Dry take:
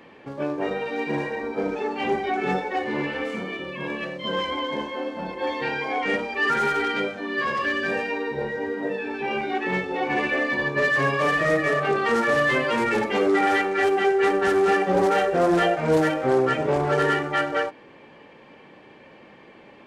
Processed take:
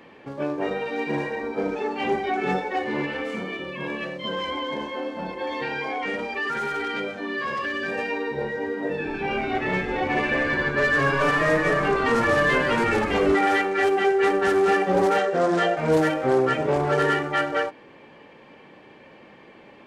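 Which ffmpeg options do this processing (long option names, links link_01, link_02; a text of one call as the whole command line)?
ffmpeg -i in.wav -filter_complex "[0:a]asettb=1/sr,asplit=3[link_01][link_02][link_03];[link_01]atrim=end=3.054[link_04];[link_02]atrim=start=3.05:end=7.98,asetpts=PTS-STARTPTS,afade=type=in:duration=0.004:curve=qsin,afade=type=out:start_time=4.926:duration=0.004:curve=qsin,acompressor=threshold=-24dB:ratio=6:attack=3.2:release=140:knee=1:detection=peak[link_05];[link_03]atrim=start=7.976[link_06];[link_04][link_05]acrossfade=duration=0.004:curve1=hsin:curve2=qsin[link_07];[link_07][link_06]acrossfade=duration=0.004:curve1=qsin:curve2=hsin,asettb=1/sr,asplit=3[link_08][link_09][link_10];[link_08]atrim=end=8.744[link_11];[link_09]atrim=start=8.74:end=13.35,asetpts=PTS-STARTPTS,afade=type=in:duration=0.004:curve=qsin,afade=type=out:start_time=4.606:duration=0.004:curve=qsin,asplit=8[link_12][link_13][link_14][link_15][link_16][link_17][link_18][link_19];[link_13]adelay=149,afreqshift=-140,volume=-9dB[link_20];[link_14]adelay=298,afreqshift=-280,volume=-13.7dB[link_21];[link_15]adelay=447,afreqshift=-420,volume=-18.5dB[link_22];[link_16]adelay=596,afreqshift=-560,volume=-23.2dB[link_23];[link_17]adelay=745,afreqshift=-700,volume=-27.9dB[link_24];[link_18]adelay=894,afreqshift=-840,volume=-32.7dB[link_25];[link_19]adelay=1043,afreqshift=-980,volume=-37.4dB[link_26];[link_12][link_20][link_21][link_22][link_23][link_24][link_25][link_26]amix=inputs=8:normalize=0,atrim=end_sample=203301[link_27];[link_10]atrim=start=13.346[link_28];[link_11][link_27]acrossfade=duration=0.004:curve1=hsin:curve2=qsin[link_29];[link_29][link_28]acrossfade=duration=0.004:curve1=qsin:curve2=hsin,asettb=1/sr,asplit=3[link_30][link_31][link_32];[link_30]atrim=end=15.184[link_33];[link_31]atrim=start=15.18:end=15.77,asetpts=PTS-STARTPTS,afade=type=in:duration=0.004:curve=qsin,afade=type=out:start_time=0.586:duration=0.004:curve=qsin,highpass=150,equalizer=frequency=320:width_type=q:width=4:gain=-4,equalizer=frequency=810:width_type=q:width=4:gain=-3,equalizer=frequency=2500:width_type=q:width=4:gain=-4,lowpass=frequency=8500:width=0.5412,lowpass=frequency=8500:width=1.3066[link_34];[link_32]atrim=start=15.766[link_35];[link_33][link_34]acrossfade=duration=0.004:curve1=hsin:curve2=qsin[link_36];[link_36][link_35]acrossfade=duration=0.004:curve1=qsin:curve2=hsin" out.wav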